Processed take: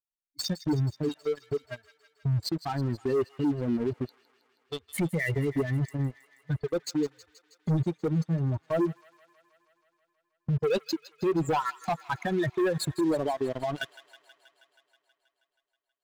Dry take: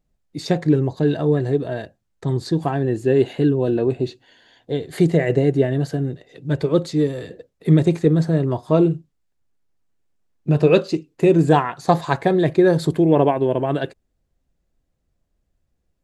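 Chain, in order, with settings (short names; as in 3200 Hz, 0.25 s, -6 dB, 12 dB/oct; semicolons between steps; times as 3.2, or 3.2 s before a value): per-bin expansion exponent 3; 1.08–1.51 HPF 280 Hz -> 1000 Hz 12 dB/oct; sample leveller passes 3; compressor 10:1, threshold -24 dBFS, peak gain reduction 14.5 dB; limiter -23 dBFS, peak gain reduction 9 dB; thin delay 0.16 s, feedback 73%, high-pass 1500 Hz, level -15 dB; gain +2 dB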